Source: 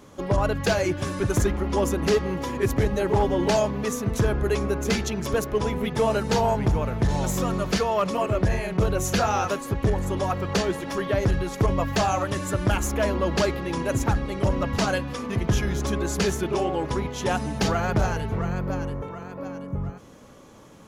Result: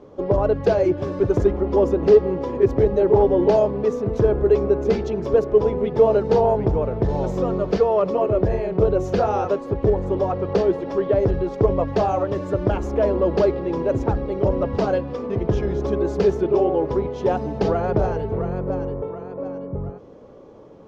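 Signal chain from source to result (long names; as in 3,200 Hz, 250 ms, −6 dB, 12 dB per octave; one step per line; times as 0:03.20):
drawn EQ curve 240 Hz 0 dB, 430 Hz +10 dB, 1,700 Hz −8 dB, 5,200 Hz −11 dB, 9,500 Hz −29 dB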